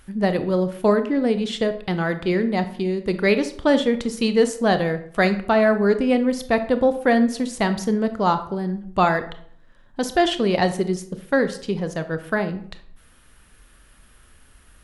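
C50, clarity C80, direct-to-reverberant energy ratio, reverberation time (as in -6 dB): 12.5 dB, 16.0 dB, 9.5 dB, 0.60 s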